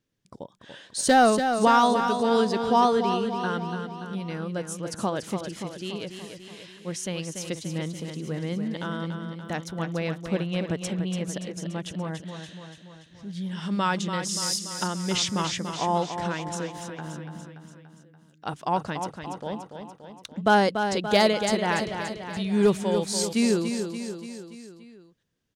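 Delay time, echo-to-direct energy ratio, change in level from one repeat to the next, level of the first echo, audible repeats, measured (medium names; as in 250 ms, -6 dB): 288 ms, -5.5 dB, -4.5 dB, -7.5 dB, 5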